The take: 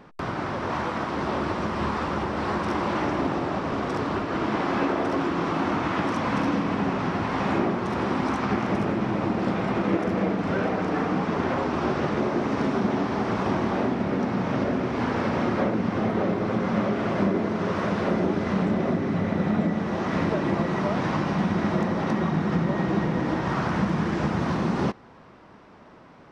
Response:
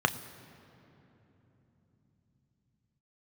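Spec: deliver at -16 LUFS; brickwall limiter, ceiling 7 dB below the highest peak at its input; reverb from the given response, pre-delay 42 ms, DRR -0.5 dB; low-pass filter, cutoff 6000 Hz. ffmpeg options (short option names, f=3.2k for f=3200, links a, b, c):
-filter_complex "[0:a]lowpass=6k,alimiter=limit=-17.5dB:level=0:latency=1,asplit=2[a][b];[1:a]atrim=start_sample=2205,adelay=42[c];[b][c]afir=irnorm=-1:irlink=0,volume=-11dB[d];[a][d]amix=inputs=2:normalize=0,volume=7.5dB"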